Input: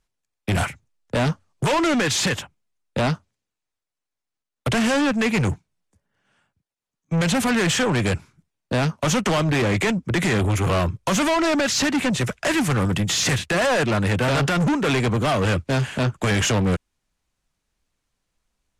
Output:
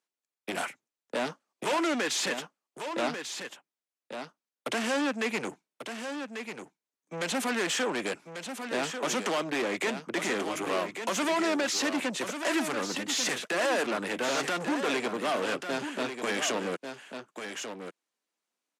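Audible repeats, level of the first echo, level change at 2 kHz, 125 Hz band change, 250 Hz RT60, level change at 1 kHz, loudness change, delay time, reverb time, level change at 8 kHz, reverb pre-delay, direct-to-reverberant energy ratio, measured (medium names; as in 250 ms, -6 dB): 1, -8.0 dB, -7.0 dB, -26.0 dB, no reverb, -7.0 dB, -9.0 dB, 1142 ms, no reverb, -7.0 dB, no reverb, no reverb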